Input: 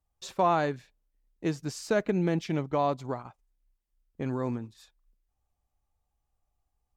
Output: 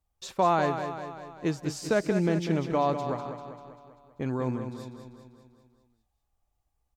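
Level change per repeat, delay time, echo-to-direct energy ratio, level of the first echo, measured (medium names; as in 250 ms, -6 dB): -5.0 dB, 196 ms, -7.0 dB, -8.5 dB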